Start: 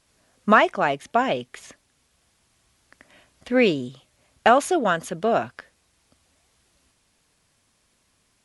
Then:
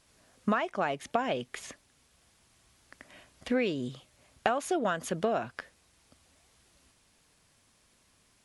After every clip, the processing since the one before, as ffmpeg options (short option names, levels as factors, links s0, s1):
-af "acompressor=threshold=0.0562:ratio=8"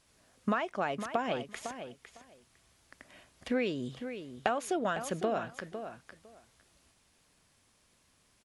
-filter_complex "[0:a]asplit=2[s0][s1];[s1]adelay=505,lowpass=f=4800:p=1,volume=0.335,asplit=2[s2][s3];[s3]adelay=505,lowpass=f=4800:p=1,volume=0.16[s4];[s0][s2][s4]amix=inputs=3:normalize=0,volume=0.75"